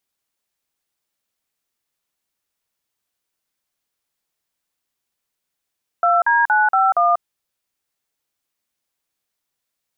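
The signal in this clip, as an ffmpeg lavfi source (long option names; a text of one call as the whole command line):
ffmpeg -f lavfi -i "aevalsrc='0.178*clip(min(mod(t,0.234),0.19-mod(t,0.234))/0.002,0,1)*(eq(floor(t/0.234),0)*(sin(2*PI*697*mod(t,0.234))+sin(2*PI*1336*mod(t,0.234)))+eq(floor(t/0.234),1)*(sin(2*PI*941*mod(t,0.234))+sin(2*PI*1633*mod(t,0.234)))+eq(floor(t/0.234),2)*(sin(2*PI*852*mod(t,0.234))+sin(2*PI*1477*mod(t,0.234)))+eq(floor(t/0.234),3)*(sin(2*PI*770*mod(t,0.234))+sin(2*PI*1336*mod(t,0.234)))+eq(floor(t/0.234),4)*(sin(2*PI*697*mod(t,0.234))+sin(2*PI*1209*mod(t,0.234))))':duration=1.17:sample_rate=44100" out.wav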